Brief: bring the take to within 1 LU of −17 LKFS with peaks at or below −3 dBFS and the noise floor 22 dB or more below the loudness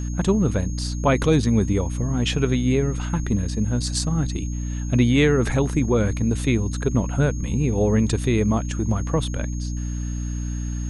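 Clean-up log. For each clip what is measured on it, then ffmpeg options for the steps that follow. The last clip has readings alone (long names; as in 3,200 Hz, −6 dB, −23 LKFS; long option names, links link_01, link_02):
mains hum 60 Hz; hum harmonics up to 300 Hz; level of the hum −24 dBFS; interfering tone 6,500 Hz; level of the tone −41 dBFS; integrated loudness −22.5 LKFS; sample peak −6.0 dBFS; target loudness −17.0 LKFS
→ -af "bandreject=frequency=60:width_type=h:width=4,bandreject=frequency=120:width_type=h:width=4,bandreject=frequency=180:width_type=h:width=4,bandreject=frequency=240:width_type=h:width=4,bandreject=frequency=300:width_type=h:width=4"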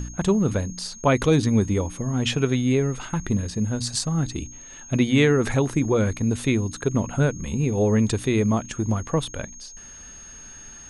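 mains hum none found; interfering tone 6,500 Hz; level of the tone −41 dBFS
→ -af "bandreject=frequency=6500:width=30"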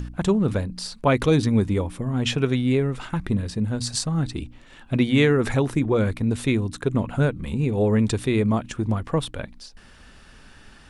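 interfering tone none found; integrated loudness −23.0 LKFS; sample peak −6.5 dBFS; target loudness −17.0 LKFS
→ -af "volume=6dB,alimiter=limit=-3dB:level=0:latency=1"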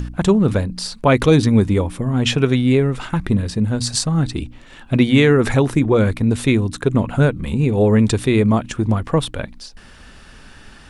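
integrated loudness −17.0 LKFS; sample peak −3.0 dBFS; background noise floor −43 dBFS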